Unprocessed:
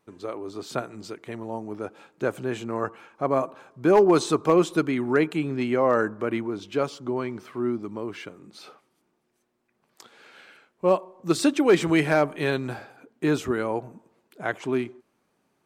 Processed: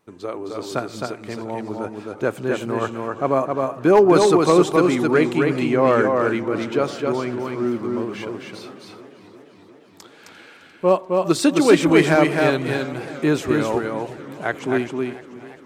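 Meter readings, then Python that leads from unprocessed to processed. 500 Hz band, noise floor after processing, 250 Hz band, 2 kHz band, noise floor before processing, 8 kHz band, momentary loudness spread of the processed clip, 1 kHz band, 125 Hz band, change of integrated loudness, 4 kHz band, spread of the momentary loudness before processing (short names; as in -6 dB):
+6.0 dB, -48 dBFS, +5.5 dB, +6.0 dB, -72 dBFS, +5.5 dB, 16 LU, +6.0 dB, +6.0 dB, +5.5 dB, +6.0 dB, 16 LU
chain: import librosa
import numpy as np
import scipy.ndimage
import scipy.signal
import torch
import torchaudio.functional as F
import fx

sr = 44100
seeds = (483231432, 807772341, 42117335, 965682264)

y = x + 10.0 ** (-3.5 / 20.0) * np.pad(x, (int(263 * sr / 1000.0), 0))[:len(x)]
y = fx.echo_warbled(y, sr, ms=348, feedback_pct=73, rate_hz=2.8, cents=74, wet_db=-17.5)
y = F.gain(torch.from_numpy(y), 4.0).numpy()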